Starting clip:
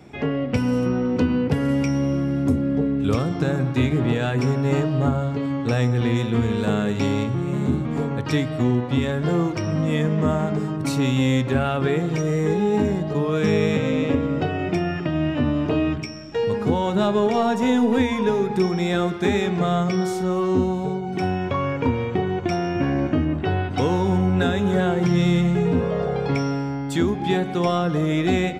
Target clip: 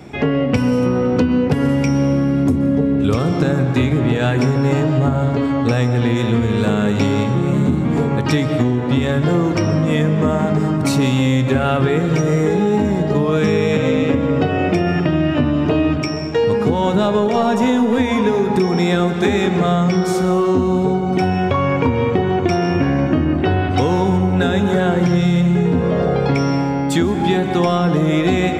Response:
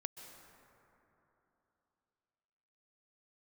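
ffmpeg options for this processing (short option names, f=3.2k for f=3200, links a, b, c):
-filter_complex "[0:a]asplit=2[a][b];[1:a]atrim=start_sample=2205[c];[b][c]afir=irnorm=-1:irlink=0,volume=8dB[d];[a][d]amix=inputs=2:normalize=0,acompressor=threshold=-12dB:ratio=6"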